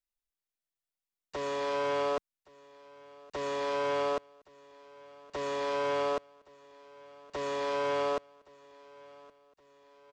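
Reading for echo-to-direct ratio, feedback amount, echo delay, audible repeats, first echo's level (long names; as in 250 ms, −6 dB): −21.5 dB, 55%, 1,119 ms, 3, −23.0 dB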